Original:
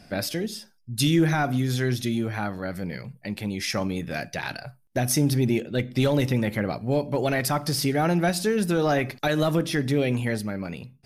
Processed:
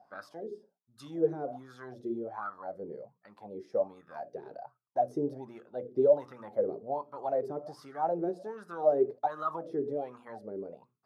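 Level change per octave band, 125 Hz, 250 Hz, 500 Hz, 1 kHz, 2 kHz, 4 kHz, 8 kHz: -24.5 dB, -15.0 dB, -3.5 dB, -4.5 dB, under -20 dB, under -30 dB, under -30 dB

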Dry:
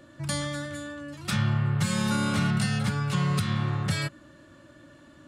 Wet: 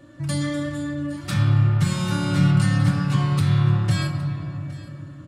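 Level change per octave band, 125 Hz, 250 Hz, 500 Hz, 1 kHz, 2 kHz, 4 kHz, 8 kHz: +8.0 dB, +5.5 dB, +3.0 dB, +1.5 dB, +1.0 dB, +1.0 dB, -0.5 dB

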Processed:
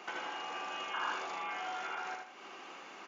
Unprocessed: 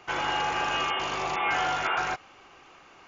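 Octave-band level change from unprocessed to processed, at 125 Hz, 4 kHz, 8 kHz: under -20 dB, -11.5 dB, no reading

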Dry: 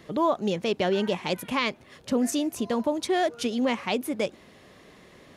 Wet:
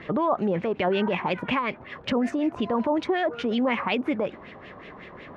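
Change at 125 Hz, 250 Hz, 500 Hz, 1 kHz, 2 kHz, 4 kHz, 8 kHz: +2.5 dB, +1.5 dB, +0.5 dB, +2.0 dB, +2.5 dB, -2.5 dB, under -15 dB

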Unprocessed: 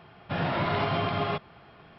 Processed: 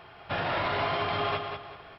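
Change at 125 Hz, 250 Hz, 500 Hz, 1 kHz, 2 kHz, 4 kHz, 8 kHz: -7.0 dB, -7.0 dB, -0.5 dB, +0.5 dB, +1.5 dB, +1.5 dB, no reading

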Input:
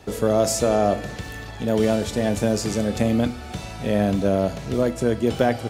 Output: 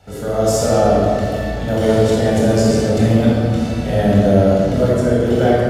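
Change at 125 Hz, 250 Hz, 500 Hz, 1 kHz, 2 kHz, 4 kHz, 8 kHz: +10.5 dB, +7.0 dB, +7.0 dB, +6.0 dB, +5.0 dB, +4.5 dB, +2.0 dB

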